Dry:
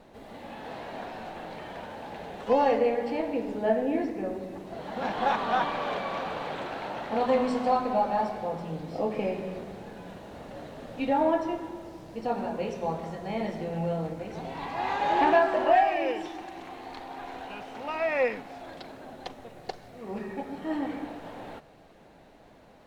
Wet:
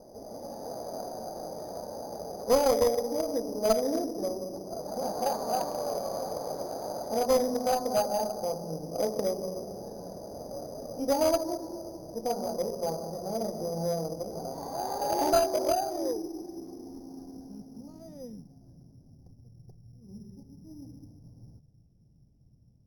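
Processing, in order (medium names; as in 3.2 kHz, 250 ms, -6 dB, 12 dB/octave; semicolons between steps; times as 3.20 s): low-pass sweep 610 Hz -> 120 Hz, 15.26–19.08 s; in parallel at -0.5 dB: compression, threshold -35 dBFS, peak gain reduction 20.5 dB; on the sum: careless resampling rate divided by 8×, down filtered, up hold; Chebyshev shaper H 2 -11 dB, 8 -26 dB, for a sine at -6.5 dBFS; trim -7 dB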